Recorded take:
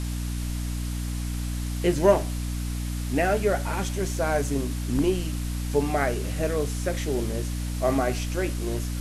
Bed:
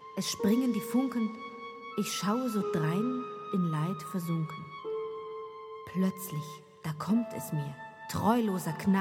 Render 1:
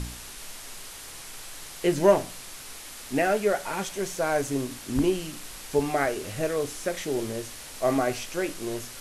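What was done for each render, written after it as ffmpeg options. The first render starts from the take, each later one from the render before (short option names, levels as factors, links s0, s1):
-af "bandreject=f=60:t=h:w=4,bandreject=f=120:t=h:w=4,bandreject=f=180:t=h:w=4,bandreject=f=240:t=h:w=4,bandreject=f=300:t=h:w=4"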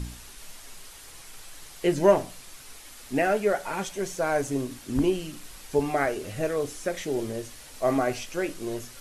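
-af "afftdn=nr=6:nf=-42"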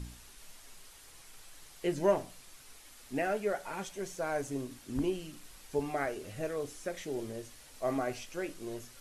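-af "volume=0.376"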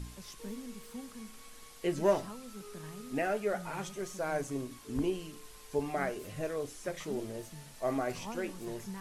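-filter_complex "[1:a]volume=0.15[s0];[0:a][s0]amix=inputs=2:normalize=0"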